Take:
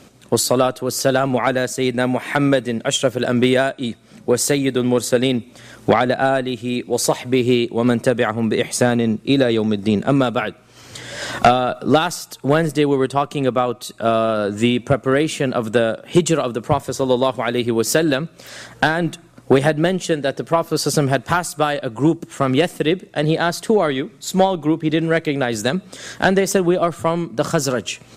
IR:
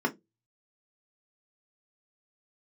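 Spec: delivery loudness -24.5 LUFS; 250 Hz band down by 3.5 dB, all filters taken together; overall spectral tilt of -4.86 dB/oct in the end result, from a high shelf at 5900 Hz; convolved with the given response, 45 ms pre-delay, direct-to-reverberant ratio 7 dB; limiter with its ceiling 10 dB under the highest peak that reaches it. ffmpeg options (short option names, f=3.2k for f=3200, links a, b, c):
-filter_complex "[0:a]equalizer=f=250:t=o:g=-4.5,highshelf=f=5.9k:g=-4.5,alimiter=limit=-13dB:level=0:latency=1,asplit=2[a][b];[1:a]atrim=start_sample=2205,adelay=45[c];[b][c]afir=irnorm=-1:irlink=0,volume=-17dB[d];[a][d]amix=inputs=2:normalize=0,volume=-1.5dB"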